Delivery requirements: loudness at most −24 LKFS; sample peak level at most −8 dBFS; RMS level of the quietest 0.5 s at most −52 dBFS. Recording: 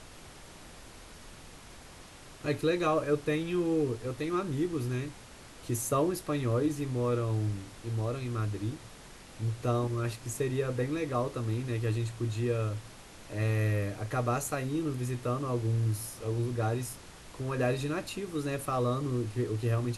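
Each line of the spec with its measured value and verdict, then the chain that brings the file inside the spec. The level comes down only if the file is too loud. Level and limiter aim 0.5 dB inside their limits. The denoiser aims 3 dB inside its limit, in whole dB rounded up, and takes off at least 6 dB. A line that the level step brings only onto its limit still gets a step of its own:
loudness −32.0 LKFS: in spec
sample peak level −16.0 dBFS: in spec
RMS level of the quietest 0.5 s −50 dBFS: out of spec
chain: broadband denoise 6 dB, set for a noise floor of −50 dBFS

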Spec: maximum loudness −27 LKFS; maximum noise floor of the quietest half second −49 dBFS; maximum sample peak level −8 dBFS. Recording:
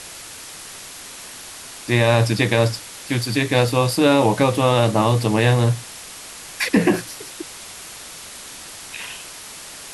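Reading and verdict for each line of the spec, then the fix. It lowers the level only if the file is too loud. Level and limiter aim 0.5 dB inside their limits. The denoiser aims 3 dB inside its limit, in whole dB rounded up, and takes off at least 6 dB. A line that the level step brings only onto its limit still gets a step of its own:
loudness −18.5 LKFS: out of spec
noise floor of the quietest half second −37 dBFS: out of spec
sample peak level −4.5 dBFS: out of spec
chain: broadband denoise 6 dB, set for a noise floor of −37 dBFS
level −9 dB

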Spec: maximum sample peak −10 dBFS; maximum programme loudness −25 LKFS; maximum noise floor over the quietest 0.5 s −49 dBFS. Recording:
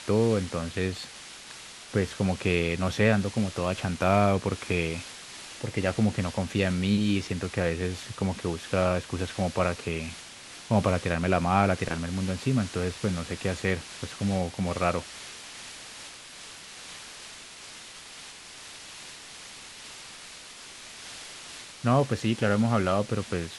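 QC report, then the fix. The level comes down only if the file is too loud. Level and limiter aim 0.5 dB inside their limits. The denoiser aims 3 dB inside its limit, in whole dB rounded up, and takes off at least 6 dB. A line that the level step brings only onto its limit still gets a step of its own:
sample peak −7.5 dBFS: out of spec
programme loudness −27.5 LKFS: in spec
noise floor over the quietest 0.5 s −45 dBFS: out of spec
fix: broadband denoise 7 dB, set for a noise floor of −45 dBFS
brickwall limiter −10.5 dBFS

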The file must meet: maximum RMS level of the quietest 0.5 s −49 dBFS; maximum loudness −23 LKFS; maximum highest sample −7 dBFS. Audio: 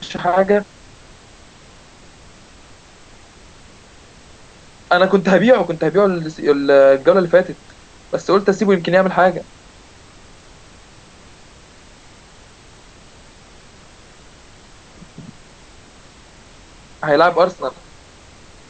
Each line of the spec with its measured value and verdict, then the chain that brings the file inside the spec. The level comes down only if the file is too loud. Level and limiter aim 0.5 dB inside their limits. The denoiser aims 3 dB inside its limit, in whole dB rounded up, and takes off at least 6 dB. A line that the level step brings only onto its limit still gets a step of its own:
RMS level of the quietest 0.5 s −44 dBFS: out of spec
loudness −15.0 LKFS: out of spec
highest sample −1.5 dBFS: out of spec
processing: level −8.5 dB

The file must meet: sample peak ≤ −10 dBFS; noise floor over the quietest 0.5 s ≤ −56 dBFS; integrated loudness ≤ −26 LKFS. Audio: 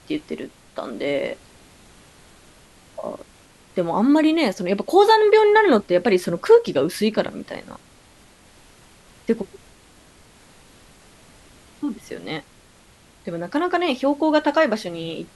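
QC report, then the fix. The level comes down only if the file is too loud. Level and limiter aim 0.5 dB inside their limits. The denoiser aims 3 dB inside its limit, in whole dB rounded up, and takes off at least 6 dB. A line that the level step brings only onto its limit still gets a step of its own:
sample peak −3.0 dBFS: out of spec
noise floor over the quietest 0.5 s −52 dBFS: out of spec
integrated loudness −19.5 LKFS: out of spec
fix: level −7 dB
brickwall limiter −10.5 dBFS

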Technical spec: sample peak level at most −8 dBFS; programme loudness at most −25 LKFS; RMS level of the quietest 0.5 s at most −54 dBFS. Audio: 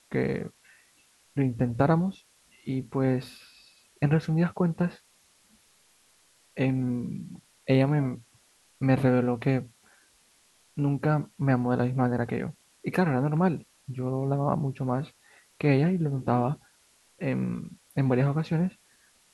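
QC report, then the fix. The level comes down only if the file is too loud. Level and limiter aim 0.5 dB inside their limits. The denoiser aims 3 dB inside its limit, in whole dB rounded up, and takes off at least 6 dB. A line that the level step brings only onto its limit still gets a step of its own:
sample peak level −9.0 dBFS: in spec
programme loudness −27.5 LKFS: in spec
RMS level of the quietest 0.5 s −63 dBFS: in spec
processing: no processing needed

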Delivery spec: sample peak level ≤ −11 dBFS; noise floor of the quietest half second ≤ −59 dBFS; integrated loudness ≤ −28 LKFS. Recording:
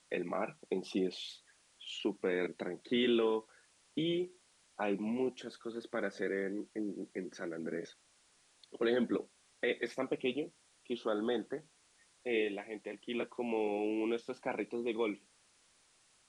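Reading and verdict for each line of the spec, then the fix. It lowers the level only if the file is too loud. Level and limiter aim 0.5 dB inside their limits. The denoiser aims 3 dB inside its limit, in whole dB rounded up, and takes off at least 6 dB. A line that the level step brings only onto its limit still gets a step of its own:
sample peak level −20.0 dBFS: in spec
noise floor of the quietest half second −69 dBFS: in spec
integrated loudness −37.0 LKFS: in spec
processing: no processing needed

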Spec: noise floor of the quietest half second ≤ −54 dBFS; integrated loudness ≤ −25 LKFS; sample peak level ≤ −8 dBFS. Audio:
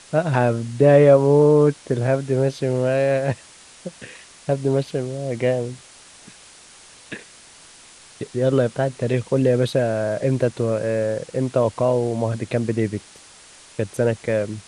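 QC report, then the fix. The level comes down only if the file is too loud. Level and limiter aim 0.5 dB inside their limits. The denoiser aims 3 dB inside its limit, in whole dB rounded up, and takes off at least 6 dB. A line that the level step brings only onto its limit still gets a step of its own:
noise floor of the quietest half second −47 dBFS: out of spec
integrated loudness −20.0 LKFS: out of spec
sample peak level −2.5 dBFS: out of spec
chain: broadband denoise 6 dB, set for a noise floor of −47 dBFS
level −5.5 dB
brickwall limiter −8.5 dBFS

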